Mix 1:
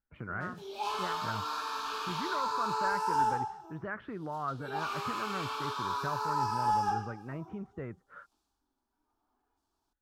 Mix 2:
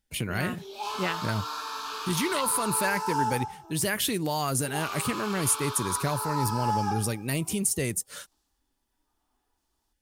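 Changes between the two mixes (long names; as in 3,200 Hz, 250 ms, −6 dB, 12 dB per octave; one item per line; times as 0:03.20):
speech: remove transistor ladder low-pass 1,500 Hz, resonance 65%
master: add high-shelf EQ 4,400 Hz +7.5 dB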